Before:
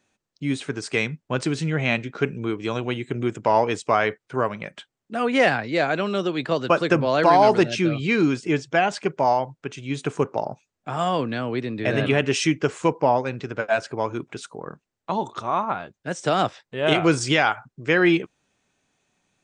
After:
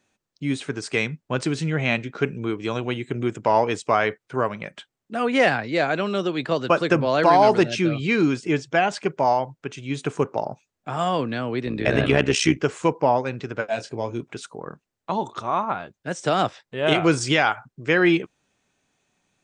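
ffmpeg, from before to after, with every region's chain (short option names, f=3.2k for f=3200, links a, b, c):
-filter_complex "[0:a]asettb=1/sr,asplit=3[a][b][c];[a]atrim=end=11.664[d];[b]atrim=start=11.66:end=12.62,asetpts=PTS-STARTPTS,afade=t=in:d=0.004:c=qsin,afade=t=out:st=0.956:d=0.004:c=qsin,acontrast=31,tremolo=f=64:d=0.71[e];[c]atrim=start=12.616[f];[d][e]acrossfade=d=0.004:c1=hsin:c2=qsin[g];[g][f]acrossfade=d=0.004:c1=qsin:c2=hsin,asettb=1/sr,asplit=3[h][i][j];[h]atrim=end=13.684[k];[i]atrim=start=13.68:end=14.22,asetpts=PTS-STARTPTS,afade=t=in:d=0.004:c=qsin,afade=t=out:st=0.536:d=0.004:c=qsin,equalizer=f=1.3k:w=1.2:g=-12,asplit=2[l][m];[m]adelay=26,volume=-8.5dB[n];[l][n]amix=inputs=2:normalize=0,atrim=end_sample=23814[o];[j]atrim=start=14.216[p];[k][o]acrossfade=d=0.004:c1=hsin:c2=qsin[q];[q][p]acrossfade=d=0.004:c1=qsin:c2=hsin"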